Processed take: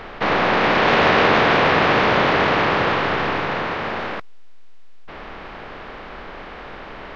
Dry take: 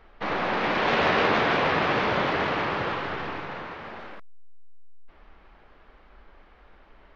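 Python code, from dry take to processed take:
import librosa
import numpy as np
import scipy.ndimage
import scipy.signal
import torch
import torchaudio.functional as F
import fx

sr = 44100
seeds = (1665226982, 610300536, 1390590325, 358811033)

y = fx.bin_compress(x, sr, power=0.6)
y = y * 10.0 ** (5.0 / 20.0)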